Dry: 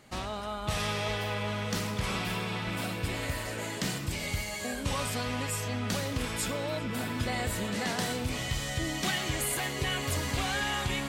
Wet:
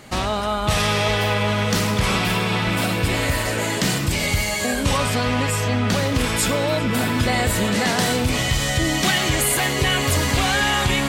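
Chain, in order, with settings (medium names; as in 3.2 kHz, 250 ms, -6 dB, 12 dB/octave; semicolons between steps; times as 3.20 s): 4.97–6.15 s: treble shelf 5.6 kHz -7.5 dB; in parallel at -1 dB: peak limiter -26.5 dBFS, peak gain reduction 8.5 dB; on the sum: trim +8 dB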